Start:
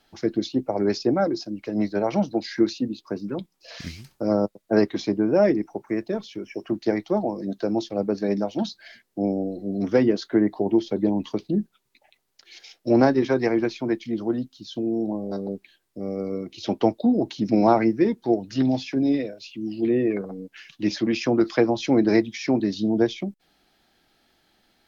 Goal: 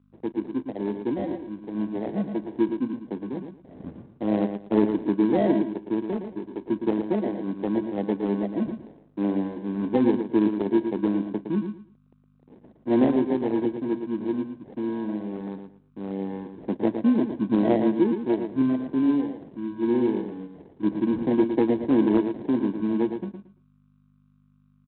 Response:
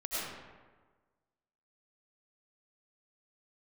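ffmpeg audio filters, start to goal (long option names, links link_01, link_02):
-af "dynaudnorm=framelen=440:gausssize=13:maxgain=9dB,aresample=11025,acrusher=bits=6:mix=0:aa=0.000001,aresample=44100,aeval=exprs='val(0)+0.00447*(sin(2*PI*50*n/s)+sin(2*PI*2*50*n/s)/2+sin(2*PI*3*50*n/s)/3+sin(2*PI*4*50*n/s)/4+sin(2*PI*5*50*n/s)/5)':channel_layout=same,acrusher=samples=34:mix=1:aa=0.000001,bandpass=frequency=270:width_type=q:width=1.2:csg=0,aecho=1:1:113|226|339:0.422|0.0928|0.0204,volume=-3.5dB" -ar 8000 -c:a adpcm_ima_wav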